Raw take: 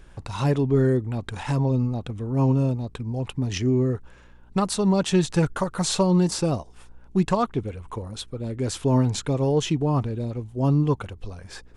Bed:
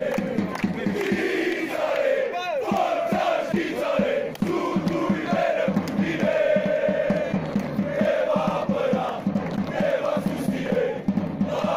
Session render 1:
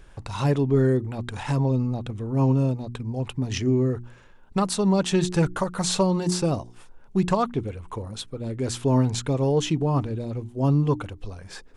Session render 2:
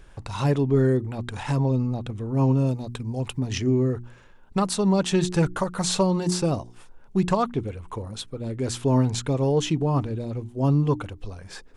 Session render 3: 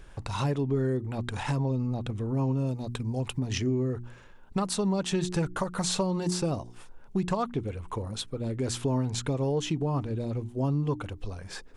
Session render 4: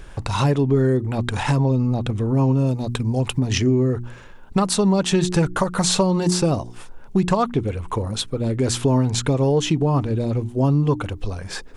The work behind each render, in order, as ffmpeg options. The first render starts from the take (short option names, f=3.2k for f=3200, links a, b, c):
-af "bandreject=f=60:t=h:w=4,bandreject=f=120:t=h:w=4,bandreject=f=180:t=h:w=4,bandreject=f=240:t=h:w=4,bandreject=f=300:t=h:w=4,bandreject=f=360:t=h:w=4"
-filter_complex "[0:a]asettb=1/sr,asplit=3[a][b][c];[a]atrim=end=2.664[d];[b]atrim=start=2.66:end=3.4,asetpts=PTS-STARTPTS,afade=t=in:d=0.004:c=qsin,afade=t=out:st=0.736:d=0.004:c=qsin,highshelf=f=4.8k:g=8.5[e];[c]atrim=start=3.396[f];[d][e]acrossfade=d=0.004:c1=hsin:c2=qsin[g];[g][f]acrossfade=d=0.004:c1=qsin:c2=hsin"
-af "acompressor=threshold=-27dB:ratio=2.5"
-af "volume=9.5dB"